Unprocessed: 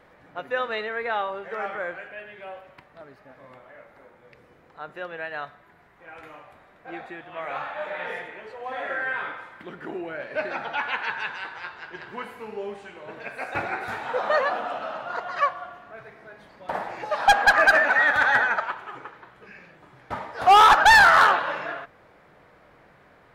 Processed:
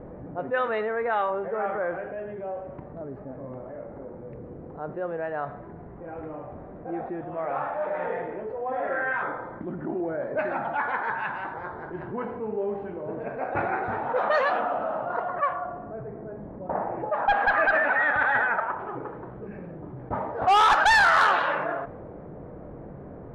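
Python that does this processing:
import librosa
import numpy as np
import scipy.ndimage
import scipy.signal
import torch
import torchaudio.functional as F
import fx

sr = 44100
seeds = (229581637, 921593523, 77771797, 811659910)

y = fx.filter_lfo_notch(x, sr, shape='square', hz=1.3, low_hz=450.0, high_hz=2700.0, q=2.7, at=(9.11, 12.08), fade=0.02)
y = fx.air_absorb(y, sr, metres=450.0, at=(15.3, 18.8))
y = fx.env_lowpass(y, sr, base_hz=400.0, full_db=-15.0)
y = scipy.signal.sosfilt(scipy.signal.butter(2, 10000.0, 'lowpass', fs=sr, output='sos'), y)
y = fx.env_flatten(y, sr, amount_pct=50)
y = y * librosa.db_to_amplitude(-5.5)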